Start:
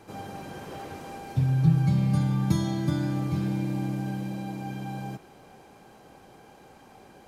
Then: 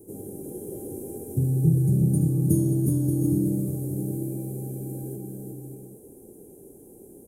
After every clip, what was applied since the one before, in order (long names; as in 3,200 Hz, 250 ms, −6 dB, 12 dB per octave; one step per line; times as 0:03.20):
drawn EQ curve 190 Hz 0 dB, 400 Hz +9 dB, 720 Hz −15 dB, 1,300 Hz −30 dB, 4,400 Hz −26 dB, 9,300 Hz +14 dB
on a send: bouncing-ball delay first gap 360 ms, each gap 0.6×, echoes 5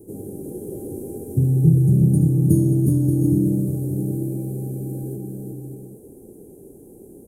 tilt shelving filter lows +3.5 dB, about 650 Hz
level +2.5 dB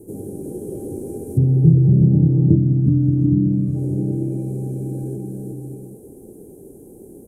treble cut that deepens with the level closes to 810 Hz, closed at −11.5 dBFS
gain on a spectral selection 0:02.56–0:03.76, 320–1,100 Hz −10 dB
feedback echo with a high-pass in the loop 351 ms, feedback 60%, level −20 dB
level +2.5 dB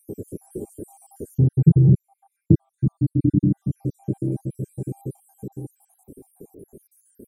time-frequency cells dropped at random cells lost 67%